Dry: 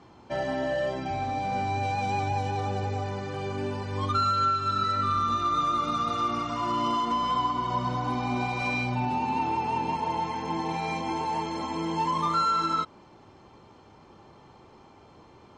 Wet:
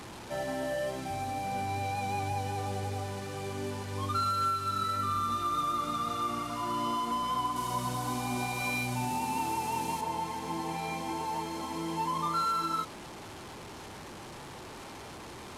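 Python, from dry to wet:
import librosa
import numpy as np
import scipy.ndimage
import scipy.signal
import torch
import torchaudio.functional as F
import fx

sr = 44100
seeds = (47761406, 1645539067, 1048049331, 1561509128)

y = fx.delta_mod(x, sr, bps=64000, step_db=-34.0)
y = fx.high_shelf(y, sr, hz=4800.0, db=9.0, at=(7.56, 10.01))
y = y * 10.0 ** (-5.0 / 20.0)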